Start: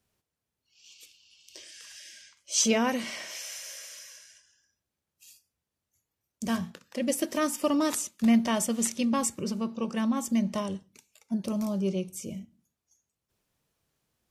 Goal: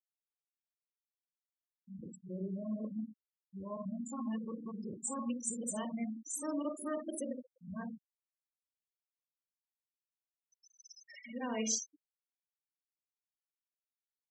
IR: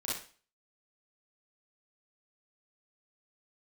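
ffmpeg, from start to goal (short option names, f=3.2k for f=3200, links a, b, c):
-filter_complex "[0:a]areverse,acompressor=threshold=-45dB:ratio=1.5,asplit=3[a][b][c];[b]adelay=297,afreqshift=69,volume=-22dB[d];[c]adelay=594,afreqshift=138,volume=-32.5dB[e];[a][d][e]amix=inputs=3:normalize=0,asplit=2[f][g];[1:a]atrim=start_sample=2205[h];[g][h]afir=irnorm=-1:irlink=0,volume=-3.5dB[i];[f][i]amix=inputs=2:normalize=0,afftfilt=real='re*gte(hypot(re,im),0.0447)':imag='im*gte(hypot(re,im),0.0447)':win_size=1024:overlap=0.75,adynamicequalizer=threshold=0.00251:dfrequency=5200:dqfactor=0.7:tfrequency=5200:tqfactor=0.7:attack=5:release=100:ratio=0.375:range=3.5:mode=boostabove:tftype=highshelf,volume=-8dB"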